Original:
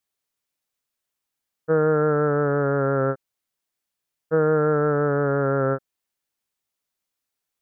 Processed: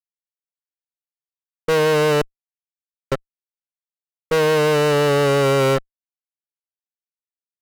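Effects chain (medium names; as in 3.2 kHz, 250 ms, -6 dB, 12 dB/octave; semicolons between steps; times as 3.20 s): 2.21–3.12 s: inverted gate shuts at -20 dBFS, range -41 dB; fuzz box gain 36 dB, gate -45 dBFS; trim -2 dB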